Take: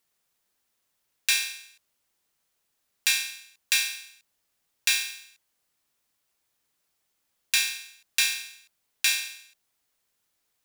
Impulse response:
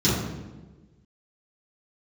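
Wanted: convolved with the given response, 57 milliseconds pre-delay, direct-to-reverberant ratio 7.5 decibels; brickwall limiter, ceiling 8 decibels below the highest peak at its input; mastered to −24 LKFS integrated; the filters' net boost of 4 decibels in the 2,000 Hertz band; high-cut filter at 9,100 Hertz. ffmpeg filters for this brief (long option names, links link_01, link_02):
-filter_complex "[0:a]lowpass=9100,equalizer=frequency=2000:width_type=o:gain=5.5,alimiter=limit=-14dB:level=0:latency=1,asplit=2[link_01][link_02];[1:a]atrim=start_sample=2205,adelay=57[link_03];[link_02][link_03]afir=irnorm=-1:irlink=0,volume=-23dB[link_04];[link_01][link_04]amix=inputs=2:normalize=0,volume=3dB"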